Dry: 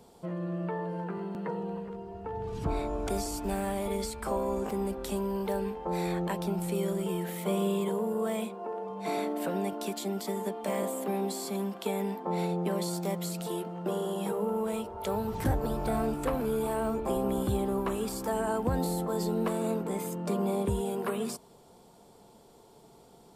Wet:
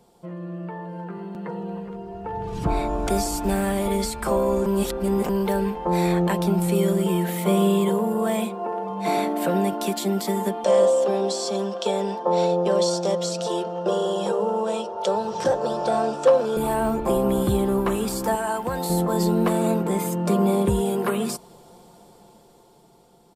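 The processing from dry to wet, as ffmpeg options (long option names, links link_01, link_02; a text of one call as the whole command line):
ffmpeg -i in.wav -filter_complex "[0:a]asettb=1/sr,asplit=3[link_01][link_02][link_03];[link_01]atrim=end=10.644[link_04];[link_02]atrim=start=10.64:end=16.57,asetpts=PTS-STARTPTS,afade=type=in:duration=0.004:curve=qsin,afade=type=out:start_time=5.926:duration=0.004:curve=qsin,highpass=270,equalizer=frequency=290:width_type=q:width=4:gain=-9,equalizer=frequency=530:width_type=q:width=4:gain=9,equalizer=frequency=2100:width_type=q:width=4:gain=-10,equalizer=frequency=3300:width_type=q:width=4:gain=3,equalizer=frequency=5600:width_type=q:width=4:gain=9,lowpass=frequency=7900:width=0.5412,lowpass=frequency=7900:width=1.3066[link_05];[link_03]atrim=start=16.566[link_06];[link_04][link_05]acrossfade=duration=0.004:curve1=hsin:curve2=qsin[link_07];[link_07][link_06]acrossfade=duration=0.004:curve1=qsin:curve2=hsin,asettb=1/sr,asplit=3[link_08][link_09][link_10];[link_08]atrim=end=18.354[link_11];[link_09]atrim=start=18.35:end=18.9,asetpts=PTS-STARTPTS,afade=type=in:duration=0.004:curve=qsin,afade=type=out:start_time=0.546:duration=0.004:curve=qsin,lowshelf=frequency=460:gain=-12[link_12];[link_10]atrim=start=18.896[link_13];[link_11][link_12]acrossfade=duration=0.004:curve1=hsin:curve2=qsin[link_14];[link_14][link_13]acrossfade=duration=0.004:curve1=qsin:curve2=hsin,asplit=3[link_15][link_16][link_17];[link_15]atrim=end=4.662[link_18];[link_16]atrim=start=4.658:end=5.292,asetpts=PTS-STARTPTS,areverse[link_19];[link_17]atrim=start=5.288[link_20];[link_18][link_19]acrossfade=duration=0.004:curve1=hsin:curve2=hsin[link_21];[link_21][link_20]acrossfade=duration=0.004:curve1=hsin:curve2=hsin,aecho=1:1:5.7:0.34,dynaudnorm=framelen=440:gausssize=9:maxgain=10.5dB,volume=-2dB" out.wav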